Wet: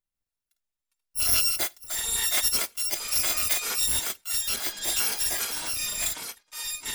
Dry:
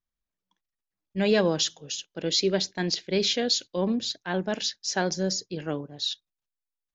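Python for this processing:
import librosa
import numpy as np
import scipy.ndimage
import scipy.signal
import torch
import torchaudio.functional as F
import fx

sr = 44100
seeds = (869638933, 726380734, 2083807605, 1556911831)

y = fx.bit_reversed(x, sr, seeds[0], block=256)
y = fx.echo_pitch(y, sr, ms=150, semitones=-7, count=3, db_per_echo=-6.0)
y = F.gain(torch.from_numpy(y), -1.0).numpy()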